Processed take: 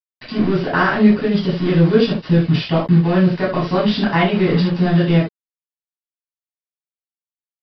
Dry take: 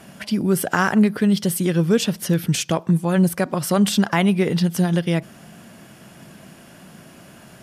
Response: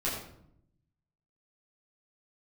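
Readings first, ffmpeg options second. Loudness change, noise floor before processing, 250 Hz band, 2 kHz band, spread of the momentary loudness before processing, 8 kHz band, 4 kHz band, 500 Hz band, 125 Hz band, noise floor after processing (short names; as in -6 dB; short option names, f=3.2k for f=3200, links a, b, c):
+3.5 dB, -46 dBFS, +3.0 dB, +3.5 dB, 5 LU, under -25 dB, +1.5 dB, +4.5 dB, +4.5 dB, under -85 dBFS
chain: -filter_complex "[0:a]aeval=exprs='val(0)*gte(abs(val(0)),0.0501)':c=same,aresample=11025,aresample=44100[a];[1:a]atrim=start_sample=2205,atrim=end_sample=3969[b];[a][b]afir=irnorm=-1:irlink=0,volume=-2.5dB"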